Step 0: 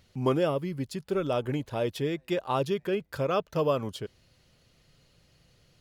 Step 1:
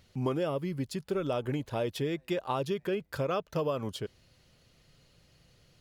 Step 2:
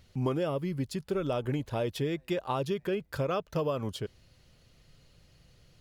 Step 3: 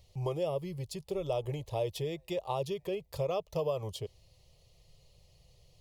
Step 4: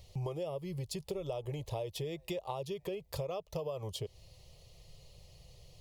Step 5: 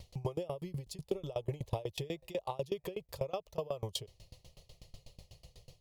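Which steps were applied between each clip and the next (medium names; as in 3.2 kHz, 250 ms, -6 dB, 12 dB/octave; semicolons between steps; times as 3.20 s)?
compression 5:1, threshold -27 dBFS, peak gain reduction 6.5 dB
bass shelf 82 Hz +8 dB
static phaser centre 620 Hz, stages 4
compression, threshold -41 dBFS, peak gain reduction 13 dB; trim +5.5 dB
sawtooth tremolo in dB decaying 8.1 Hz, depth 25 dB; trim +7 dB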